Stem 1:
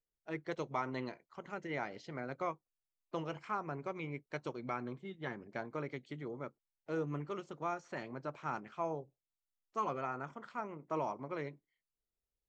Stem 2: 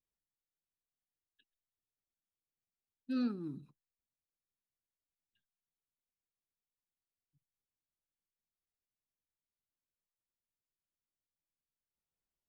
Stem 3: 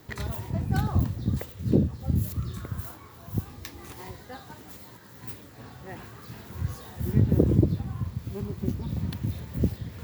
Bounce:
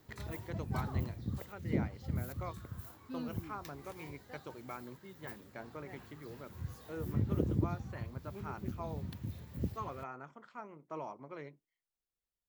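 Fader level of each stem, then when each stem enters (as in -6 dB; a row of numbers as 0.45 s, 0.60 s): -6.0 dB, -8.0 dB, -11.5 dB; 0.00 s, 0.00 s, 0.00 s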